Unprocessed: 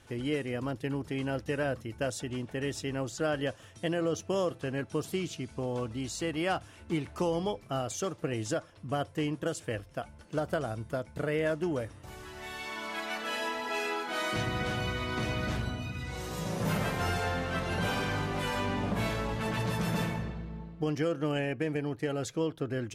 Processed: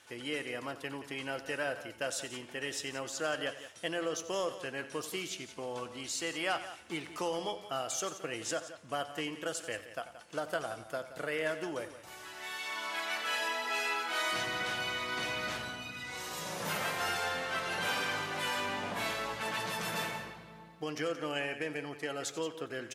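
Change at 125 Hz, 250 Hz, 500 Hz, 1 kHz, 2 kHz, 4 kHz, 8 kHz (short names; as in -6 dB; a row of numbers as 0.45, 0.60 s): -15.0, -9.5, -4.5, -1.0, +1.5, +2.5, +2.5 dB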